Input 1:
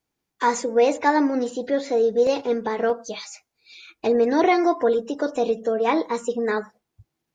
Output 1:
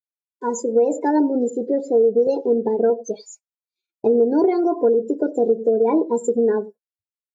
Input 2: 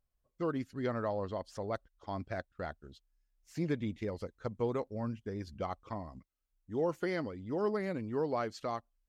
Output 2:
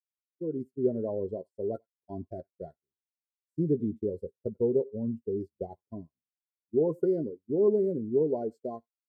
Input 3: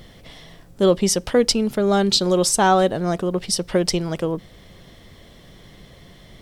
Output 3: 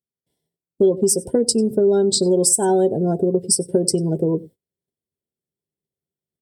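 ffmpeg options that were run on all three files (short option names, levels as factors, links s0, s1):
-filter_complex "[0:a]highpass=110,asplit=2[s0][s1];[s1]aecho=0:1:95:0.112[s2];[s0][s2]amix=inputs=2:normalize=0,agate=range=0.0562:threshold=0.00794:ratio=16:detection=peak,asuperstop=centerf=1200:order=20:qfactor=4.1,equalizer=f=1900:w=0.43:g=-14.5,dynaudnorm=f=400:g=3:m=2.11,equalizer=f=400:t=o:w=0.33:g=10,equalizer=f=1250:t=o:w=0.33:g=9,equalizer=f=5000:t=o:w=0.33:g=4,equalizer=f=8000:t=o:w=0.33:g=7,afftdn=nr=25:nf=-27,aexciter=amount=3.9:drive=4:freq=8500,acompressor=threshold=0.2:ratio=6,asplit=2[s3][s4];[s4]adelay=13,volume=0.251[s5];[s3][s5]amix=inputs=2:normalize=0"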